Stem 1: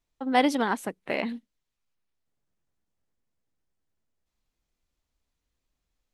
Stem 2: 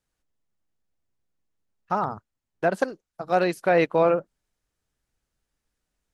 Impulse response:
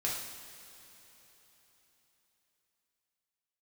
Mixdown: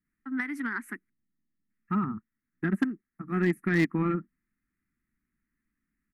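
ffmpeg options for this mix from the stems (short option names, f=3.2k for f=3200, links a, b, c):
-filter_complex "[0:a]highpass=520,acompressor=threshold=-27dB:ratio=12,adelay=50,volume=1dB,asplit=3[a][b][c];[a]atrim=end=1.1,asetpts=PTS-STARTPTS,afade=t=out:st=1.096:d=0.004:c=hsin[d];[b]atrim=start=1.1:end=1.7,asetpts=PTS-STARTPTS,volume=0[e];[c]atrim=start=1.7,asetpts=PTS-STARTPTS,afade=t=in:d=0.004:c=hsin[f];[d][e][f]concat=n=3:v=0:a=1[g];[1:a]equalizer=f=5k:t=o:w=0.97:g=-13.5,bandreject=f=1.5k:w=5.3,volume=-2.5dB[h];[g][h]amix=inputs=2:normalize=0,firequalizer=gain_entry='entry(110,0);entry(220,14);entry(360,2);entry(540,-30);entry(1300,3);entry(1900,8);entry(3300,-22);entry(10000,-4)':delay=0.05:min_phase=1,aeval=exprs='0.15*(cos(1*acos(clip(val(0)/0.15,-1,1)))-cos(1*PI/2))+0.0106*(cos(3*acos(clip(val(0)/0.15,-1,1)))-cos(3*PI/2))':c=same"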